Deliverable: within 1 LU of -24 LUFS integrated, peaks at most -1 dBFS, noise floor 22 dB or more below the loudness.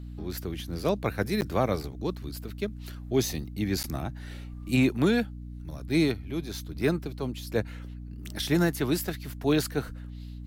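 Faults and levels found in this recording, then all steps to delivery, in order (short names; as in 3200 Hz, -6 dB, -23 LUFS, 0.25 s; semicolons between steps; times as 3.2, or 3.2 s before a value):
dropouts 2; longest dropout 9.7 ms; hum 60 Hz; harmonics up to 300 Hz; hum level -37 dBFS; loudness -29.0 LUFS; peak -13.0 dBFS; loudness target -24.0 LUFS
-> interpolate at 1.41/3.83, 9.7 ms; notches 60/120/180/240/300 Hz; gain +5 dB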